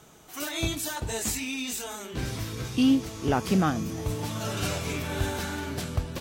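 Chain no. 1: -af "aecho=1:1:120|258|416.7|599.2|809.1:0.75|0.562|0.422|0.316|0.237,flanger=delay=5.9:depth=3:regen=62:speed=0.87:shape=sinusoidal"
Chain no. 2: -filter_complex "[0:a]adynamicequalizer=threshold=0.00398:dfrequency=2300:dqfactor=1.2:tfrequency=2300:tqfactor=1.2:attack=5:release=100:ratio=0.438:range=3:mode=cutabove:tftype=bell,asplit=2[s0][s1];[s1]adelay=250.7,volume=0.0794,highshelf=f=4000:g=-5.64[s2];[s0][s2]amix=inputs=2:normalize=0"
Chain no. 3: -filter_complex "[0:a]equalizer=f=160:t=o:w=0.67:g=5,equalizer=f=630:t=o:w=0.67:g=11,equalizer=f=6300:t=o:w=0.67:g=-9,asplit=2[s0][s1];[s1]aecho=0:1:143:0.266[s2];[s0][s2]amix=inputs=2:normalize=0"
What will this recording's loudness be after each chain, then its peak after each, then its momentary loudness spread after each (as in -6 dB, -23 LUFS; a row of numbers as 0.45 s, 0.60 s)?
-30.0 LUFS, -29.5 LUFS, -26.5 LUFS; -13.0 dBFS, -13.0 dBFS, -8.5 dBFS; 9 LU, 10 LU, 11 LU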